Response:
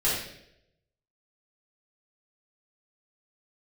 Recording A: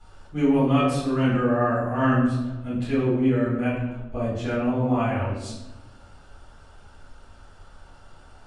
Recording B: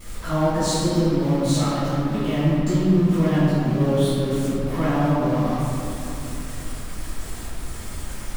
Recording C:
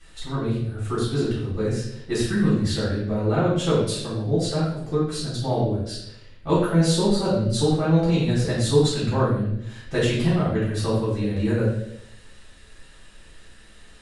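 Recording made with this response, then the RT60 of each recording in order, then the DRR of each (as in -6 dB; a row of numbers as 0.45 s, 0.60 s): C; 1.1 s, 2.9 s, 0.80 s; -11.0 dB, -14.0 dB, -10.5 dB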